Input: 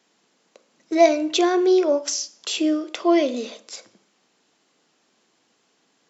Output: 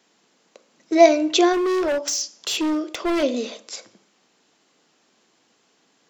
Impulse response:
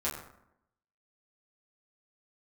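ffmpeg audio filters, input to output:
-filter_complex "[0:a]asplit=3[a][b][c];[a]afade=t=out:st=1.52:d=0.02[d];[b]volume=22dB,asoftclip=hard,volume=-22dB,afade=t=in:st=1.52:d=0.02,afade=t=out:st=3.22:d=0.02[e];[c]afade=t=in:st=3.22:d=0.02[f];[d][e][f]amix=inputs=3:normalize=0,volume=2.5dB"

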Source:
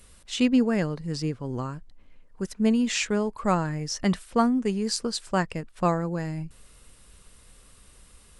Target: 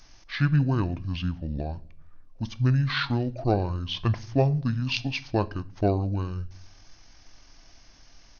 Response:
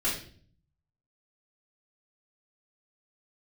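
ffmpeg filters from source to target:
-filter_complex "[0:a]asetrate=25476,aresample=44100,atempo=1.73107,asplit=2[a][b];[1:a]atrim=start_sample=2205[c];[b][c]afir=irnorm=-1:irlink=0,volume=-22.5dB[d];[a][d]amix=inputs=2:normalize=0"

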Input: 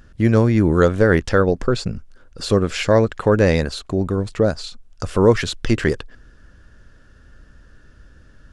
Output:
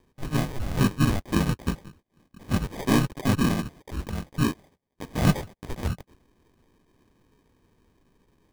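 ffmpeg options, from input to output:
-filter_complex "[0:a]highpass=f=390:t=q:w=0.5412,highpass=f=390:t=q:w=1.307,lowpass=f=2.3k:t=q:w=0.5176,lowpass=f=2.3k:t=q:w=0.7071,lowpass=f=2.3k:t=q:w=1.932,afreqshift=-320,asplit=2[a][b];[b]asetrate=55563,aresample=44100,atempo=0.793701,volume=-1dB[c];[a][c]amix=inputs=2:normalize=0,acrusher=samples=32:mix=1:aa=0.000001,volume=-7dB"

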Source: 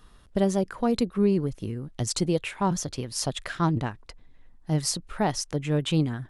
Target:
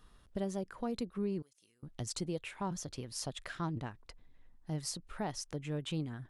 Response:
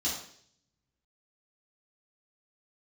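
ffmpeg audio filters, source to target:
-filter_complex "[0:a]acompressor=threshold=-35dB:ratio=1.5,asettb=1/sr,asplit=3[a][b][c];[a]atrim=end=1.424[d];[b]atrim=start=1.42:end=1.83,asetpts=PTS-STARTPTS,afade=t=in:d=0.004:c=qsin,afade=t=out:st=0.406:d=0.004:c=qsin,bandpass=f=7.6k:t=q:w=1.1:csg=0[e];[c]atrim=start=1.826[f];[d][e]acrossfade=d=0.004:c1=hsin:c2=qsin[g];[g][f]acrossfade=d=0.004:c1=qsin:c2=hsin,volume=-7.5dB"

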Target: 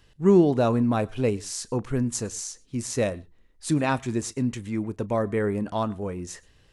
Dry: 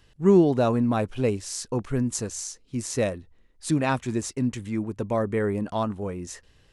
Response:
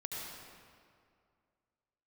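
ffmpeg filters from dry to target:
-filter_complex "[0:a]asplit=2[a][b];[1:a]atrim=start_sample=2205,atrim=end_sample=3969,adelay=34[c];[b][c]afir=irnorm=-1:irlink=0,volume=-16dB[d];[a][d]amix=inputs=2:normalize=0"

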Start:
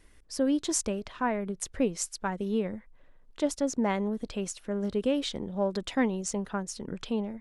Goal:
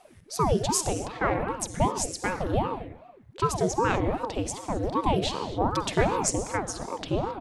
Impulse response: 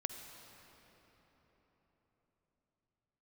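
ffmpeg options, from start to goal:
-filter_complex "[0:a]asettb=1/sr,asplit=3[a][b][c];[a]atrim=end=5.754[d];[b]atrim=start=5.75:end=6.3,asetpts=PTS-STARTPTS,afade=t=in:d=0.004:c=qsin,afade=t=out:st=0.546:d=0.004:c=qsin,highshelf=f=6.3k:g=10[e];[c]atrim=start=6.296[f];[d][e]acrossfade=d=0.004:c1=hsin:c2=qsin[g];[g][f]acrossfade=d=0.004:c1=qsin:c2=hsin,acontrast=76,asplit=2[h][i];[i]adelay=270,highpass=300,lowpass=3.4k,asoftclip=type=hard:threshold=-15.5dB,volume=-20dB[j];[h][j]amix=inputs=2:normalize=0[k];[1:a]atrim=start_sample=2205,afade=t=out:st=0.32:d=0.01,atrim=end_sample=14553[l];[k][l]afir=irnorm=-1:irlink=0,aeval=exprs='val(0)*sin(2*PI*410*n/s+410*0.8/2.6*sin(2*PI*2.6*n/s))':c=same"

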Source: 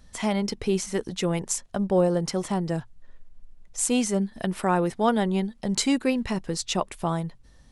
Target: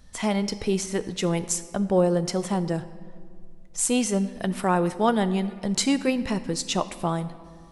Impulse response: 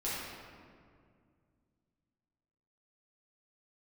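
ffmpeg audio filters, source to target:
-filter_complex "[0:a]asplit=2[a][b];[1:a]atrim=start_sample=2205,highshelf=f=4k:g=8[c];[b][c]afir=irnorm=-1:irlink=0,volume=-18.5dB[d];[a][d]amix=inputs=2:normalize=0"

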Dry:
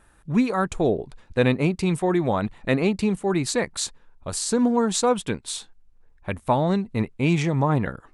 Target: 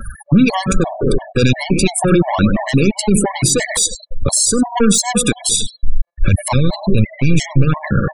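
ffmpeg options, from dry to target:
-filter_complex "[0:a]asoftclip=type=tanh:threshold=-21.5dB,asplit=2[a][b];[b]adelay=99,lowpass=f=2.6k:p=1,volume=-10.5dB,asplit=2[c][d];[d]adelay=99,lowpass=f=2.6k:p=1,volume=0.48,asplit=2[e][f];[f]adelay=99,lowpass=f=2.6k:p=1,volume=0.48,asplit=2[g][h];[h]adelay=99,lowpass=f=2.6k:p=1,volume=0.48,asplit=2[i][j];[j]adelay=99,lowpass=f=2.6k:p=1,volume=0.48[k];[a][c][e][g][i][k]amix=inputs=6:normalize=0,aphaser=in_gain=1:out_gain=1:delay=4:decay=0.28:speed=1.4:type=triangular,acrossover=split=180|3000[l][m][n];[m]acompressor=threshold=-37dB:ratio=2[o];[l][o][n]amix=inputs=3:normalize=0,highshelf=f=5.1k:g=10,bandreject=f=60:t=h:w=6,bandreject=f=120:t=h:w=6,bandreject=f=180:t=h:w=6,bandreject=f=240:t=h:w=6,bandreject=f=300:t=h:w=6,bandreject=f=360:t=h:w=6,acompressor=threshold=-36dB:ratio=10,asettb=1/sr,asplit=3[p][q][r];[p]atrim=end=5.394[s];[q]atrim=start=5.39:end=7.65,asetpts=PTS-STARTPTS,afade=t=in:d=0.004:c=qsin,afade=t=out:st=2.256:d=0.004:c=qsin,lowshelf=f=100:g=11[t];[r]atrim=start=7.646[u];[s][t]acrossfade=d=0.004:c1=hsin:c2=qsin[v];[v][u]acrossfade=d=0.004:c1=qsin:c2=hsin,afftfilt=real='re*gte(hypot(re,im),0.00355)':imag='im*gte(hypot(re,im),0.00355)':win_size=1024:overlap=0.75,alimiter=level_in=31.5dB:limit=-1dB:release=50:level=0:latency=1,afftfilt=real='re*gt(sin(2*PI*2.9*pts/sr)*(1-2*mod(floor(b*sr/1024/560),2)),0)':imag='im*gt(sin(2*PI*2.9*pts/sr)*(1-2*mod(floor(b*sr/1024/560),2)),0)':win_size=1024:overlap=0.75,volume=-1dB"

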